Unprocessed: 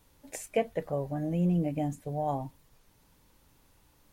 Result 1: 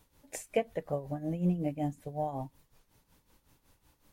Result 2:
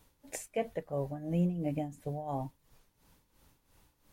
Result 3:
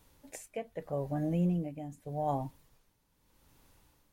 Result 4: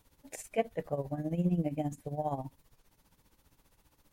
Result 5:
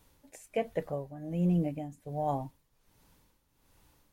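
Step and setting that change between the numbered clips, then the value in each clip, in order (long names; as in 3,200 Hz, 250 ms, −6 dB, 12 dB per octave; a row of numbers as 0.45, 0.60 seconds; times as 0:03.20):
amplitude tremolo, speed: 5.4, 2.9, 0.82, 15, 1.3 Hertz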